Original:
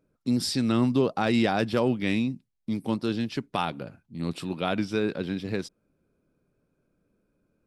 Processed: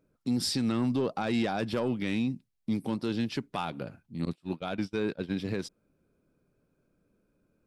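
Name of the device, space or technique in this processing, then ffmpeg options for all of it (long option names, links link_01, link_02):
soft clipper into limiter: -filter_complex "[0:a]asoftclip=type=tanh:threshold=-15dB,alimiter=limit=-21dB:level=0:latency=1:release=130,asettb=1/sr,asplit=3[link_01][link_02][link_03];[link_01]atrim=end=4.254[link_04];[link_02]atrim=start=4.25:end=5.33,asetpts=PTS-STARTPTS,afade=type=in:duration=0.004:curve=qsin,afade=type=out:start_time=1.076:duration=0.004:curve=qsin,agate=range=-34dB:threshold=-31dB:ratio=16:detection=peak[link_05];[link_03]atrim=start=5.326[link_06];[link_04][link_05]acrossfade=duration=0.004:curve1=hsin:curve2=qsin[link_07];[link_07][link_06]acrossfade=duration=0.004:curve1=qsin:curve2=hsin"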